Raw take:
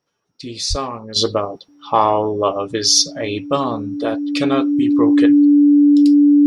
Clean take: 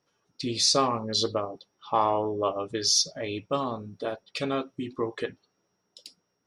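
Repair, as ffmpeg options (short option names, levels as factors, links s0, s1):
-filter_complex "[0:a]bandreject=f=290:w=30,asplit=3[s0][s1][s2];[s0]afade=t=out:st=0.69:d=0.02[s3];[s1]highpass=f=140:w=0.5412,highpass=f=140:w=1.3066,afade=t=in:st=0.69:d=0.02,afade=t=out:st=0.81:d=0.02[s4];[s2]afade=t=in:st=0.81:d=0.02[s5];[s3][s4][s5]amix=inputs=3:normalize=0,asetnsamples=n=441:p=0,asendcmd='1.16 volume volume -9.5dB',volume=1"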